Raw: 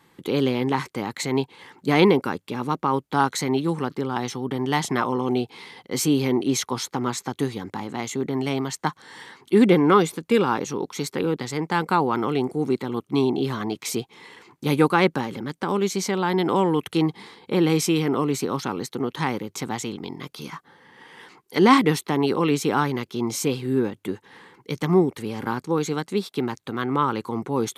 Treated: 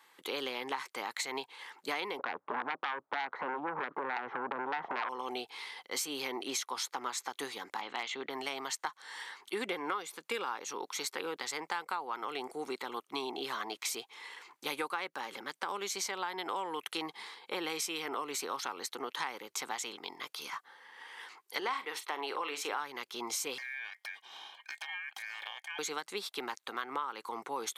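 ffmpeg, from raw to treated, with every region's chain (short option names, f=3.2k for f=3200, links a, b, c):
-filter_complex "[0:a]asettb=1/sr,asplit=3[a][b][c];[a]atrim=end=2.194[d];[b]atrim=start=2.19:end=5.09,asetpts=PTS-STARTPTS,afade=t=in:d=0.004:c=qsin,afade=t=out:st=2.896:d=0.004:c=qsin,lowpass=f=1.2k:w=0.5412,lowpass=f=1.2k:w=1.3066,acompressor=threshold=-26dB:ratio=4:attack=3.2:release=140:knee=1:detection=peak,aeval=exprs='0.158*sin(PI/2*3.55*val(0)/0.158)':c=same[e];[c]atrim=start=5.086[f];[d][e]acrossfade=d=0.004:c1=hsin:c2=qsin[g];[g][f]acrossfade=d=0.004:c1=qsin:c2=hsin,asettb=1/sr,asplit=3[h][i][j];[h]atrim=end=7.814[k];[i]atrim=start=7.81:end=8.3,asetpts=PTS-STARTPTS,afade=t=in:d=0.004:c=qsin,afade=t=out:st=0.486:d=0.004:c=qsin,lowpass=f=3.3k:t=q:w=1.8,asoftclip=type=hard:threshold=-15.5dB[l];[j]atrim=start=8.296[m];[k][l]acrossfade=d=0.004:c1=hsin:c2=qsin[n];[n][m]acrossfade=d=0.004:c1=qsin:c2=hsin,asettb=1/sr,asplit=3[o][p][q];[o]atrim=end=21.604[r];[p]atrim=start=21.6:end=22.8,asetpts=PTS-STARTPTS,afade=t=in:d=0.004:c=qsin,afade=t=out:st=1.196:d=0.004:c=qsin,bass=f=250:g=-13,treble=f=4k:g=-6,asplit=2[s][t];[t]adelay=43,volume=-12.5dB[u];[s][u]amix=inputs=2:normalize=0,atrim=end_sample=52920[v];[q]atrim=start=22.796[w];[r][v]acrossfade=d=0.004:c1=hsin:c2=qsin[x];[x][w]acrossfade=d=0.004:c1=qsin:c2=hsin,asettb=1/sr,asplit=3[y][z][aa];[y]atrim=end=23.584[ab];[z]atrim=start=23.58:end=25.79,asetpts=PTS-STARTPTS,afade=t=in:d=0.004:c=qsin,afade=t=out:st=2.206:d=0.004:c=qsin,equalizer=f=1.2k:w=3.6:g=14.5,acompressor=threshold=-34dB:ratio=8:attack=3.2:release=140:knee=1:detection=peak,aeval=exprs='val(0)*sin(2*PI*2000*n/s)':c=same[ac];[aa]atrim=start=25.786[ad];[ab][ac]acrossfade=d=0.004:c1=hsin:c2=qsin[ae];[ae][ad]acrossfade=d=0.004:c1=qsin:c2=hsin,highpass=790,acompressor=threshold=-31dB:ratio=8,volume=-1.5dB"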